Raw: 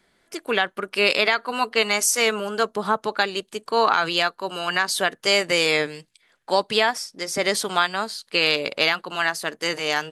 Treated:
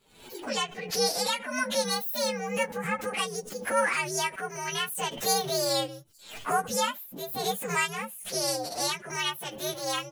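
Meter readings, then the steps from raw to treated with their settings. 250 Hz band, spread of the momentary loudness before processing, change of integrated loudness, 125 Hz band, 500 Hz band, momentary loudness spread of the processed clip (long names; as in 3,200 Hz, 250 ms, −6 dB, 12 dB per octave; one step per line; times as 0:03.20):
−5.5 dB, 7 LU, −7.0 dB, −1.5 dB, −7.0 dB, 9 LU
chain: partials spread apart or drawn together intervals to 130%
background raised ahead of every attack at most 90 dB per second
level −4 dB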